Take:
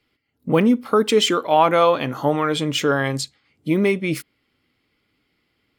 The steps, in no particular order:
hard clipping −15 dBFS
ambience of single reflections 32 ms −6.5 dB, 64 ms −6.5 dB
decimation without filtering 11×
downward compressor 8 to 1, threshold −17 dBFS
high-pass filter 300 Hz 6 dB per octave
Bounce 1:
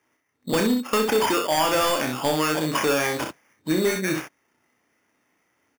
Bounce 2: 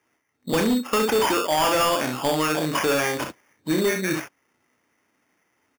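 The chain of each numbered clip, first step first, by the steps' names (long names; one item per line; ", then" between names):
decimation without filtering, then high-pass filter, then hard clipping, then ambience of single reflections, then downward compressor
ambience of single reflections, then decimation without filtering, then high-pass filter, then hard clipping, then downward compressor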